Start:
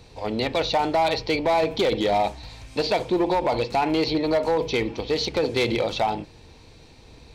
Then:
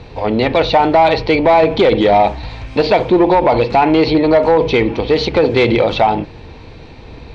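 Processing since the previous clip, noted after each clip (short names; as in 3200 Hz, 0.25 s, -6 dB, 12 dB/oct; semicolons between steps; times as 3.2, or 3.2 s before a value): LPF 2800 Hz 12 dB/oct; in parallel at -1 dB: limiter -24.5 dBFS, peak gain reduction 9 dB; on the sum: gain +8.5 dB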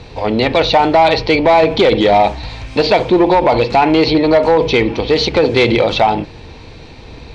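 high shelf 4700 Hz +11 dB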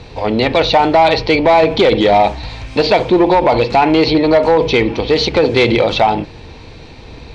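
nothing audible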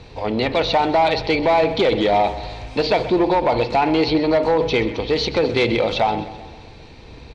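feedback echo 0.129 s, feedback 57%, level -15 dB; gain -6.5 dB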